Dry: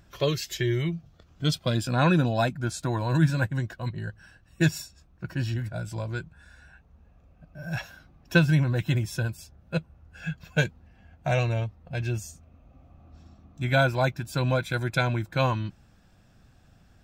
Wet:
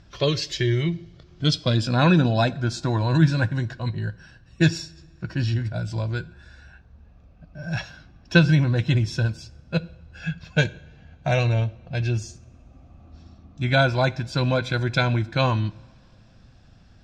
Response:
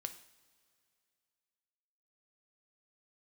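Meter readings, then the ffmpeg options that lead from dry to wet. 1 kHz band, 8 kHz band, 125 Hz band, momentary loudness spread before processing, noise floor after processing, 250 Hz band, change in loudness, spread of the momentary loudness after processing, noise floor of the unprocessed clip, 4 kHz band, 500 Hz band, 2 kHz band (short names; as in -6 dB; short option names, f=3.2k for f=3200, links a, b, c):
+2.5 dB, 0.0 dB, +4.5 dB, 14 LU, -53 dBFS, +4.5 dB, +4.0 dB, 14 LU, -59 dBFS, +6.0 dB, +3.0 dB, +3.0 dB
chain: -filter_complex "[0:a]lowpass=f=5k:t=q:w=1.8,asplit=2[a][b];[1:a]atrim=start_sample=2205,lowshelf=f=410:g=8[c];[b][c]afir=irnorm=-1:irlink=0,volume=-2dB[d];[a][d]amix=inputs=2:normalize=0,volume=-2dB"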